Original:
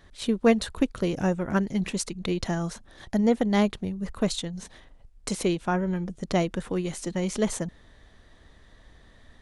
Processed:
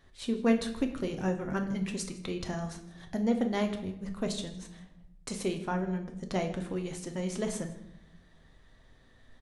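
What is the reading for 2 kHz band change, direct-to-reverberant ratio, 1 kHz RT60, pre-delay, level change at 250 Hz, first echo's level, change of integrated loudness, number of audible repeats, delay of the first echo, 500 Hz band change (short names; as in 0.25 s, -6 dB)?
-6.0 dB, 4.0 dB, 0.75 s, 8 ms, -5.5 dB, -20.0 dB, -6.0 dB, 1, 0.159 s, -6.5 dB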